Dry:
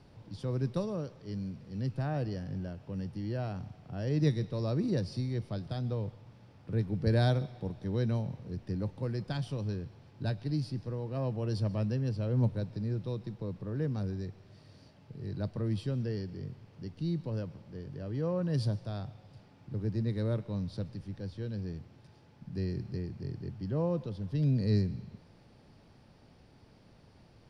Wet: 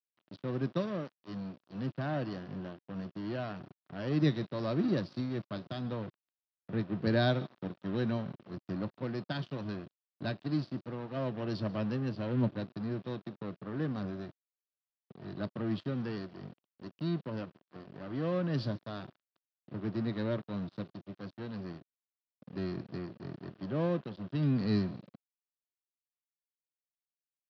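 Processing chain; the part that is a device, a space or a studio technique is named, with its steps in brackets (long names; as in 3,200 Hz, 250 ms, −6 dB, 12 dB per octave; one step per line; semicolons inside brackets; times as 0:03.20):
blown loudspeaker (dead-zone distortion −44 dBFS; loudspeaker in its box 210–4,100 Hz, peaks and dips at 460 Hz −9 dB, 840 Hz −7 dB, 2,200 Hz −4 dB)
level +6 dB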